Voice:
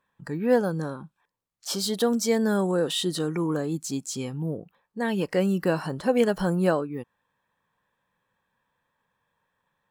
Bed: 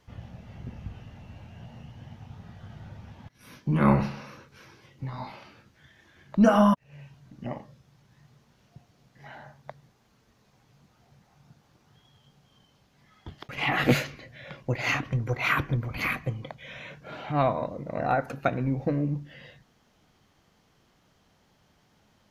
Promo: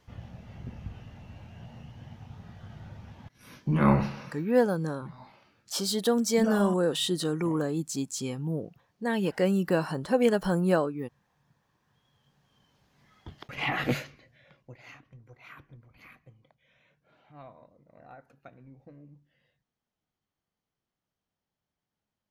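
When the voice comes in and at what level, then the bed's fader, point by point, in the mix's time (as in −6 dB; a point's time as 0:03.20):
4.05 s, −1.5 dB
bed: 0:04.22 −1 dB
0:04.59 −12.5 dB
0:11.82 −12.5 dB
0:13.00 −2.5 dB
0:13.66 −2.5 dB
0:14.99 −24.5 dB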